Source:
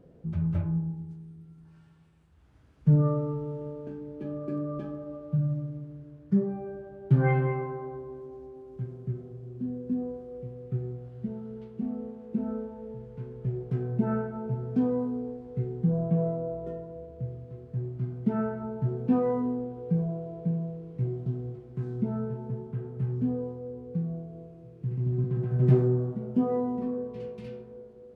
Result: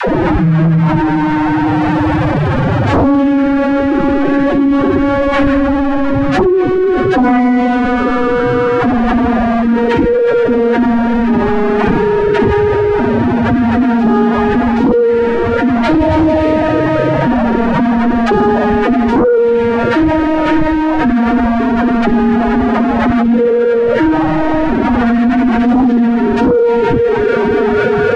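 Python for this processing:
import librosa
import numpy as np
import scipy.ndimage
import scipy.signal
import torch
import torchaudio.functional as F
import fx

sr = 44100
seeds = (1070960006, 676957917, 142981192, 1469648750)

p1 = fx.delta_mod(x, sr, bps=64000, step_db=-30.0)
p2 = fx.peak_eq(p1, sr, hz=1100.0, db=-5.5, octaves=0.24)
p3 = fx.rider(p2, sr, range_db=10, speed_s=2.0)
p4 = p2 + F.gain(torch.from_numpy(p3), 0.5).numpy()
p5 = fx.hum_notches(p4, sr, base_hz=60, count=7)
p6 = fx.room_flutter(p5, sr, wall_m=10.0, rt60_s=0.64)
p7 = fx.pitch_keep_formants(p6, sr, semitones=11.0)
p8 = fx.dispersion(p7, sr, late='lows', ms=81.0, hz=410.0)
p9 = fx.fold_sine(p8, sr, drive_db=9, ceiling_db=-5.0)
p10 = scipy.signal.sosfilt(scipy.signal.butter(2, 1400.0, 'lowpass', fs=sr, output='sos'), p9)
p11 = fx.env_flatten(p10, sr, amount_pct=70)
y = F.gain(torch.from_numpy(p11), -2.0).numpy()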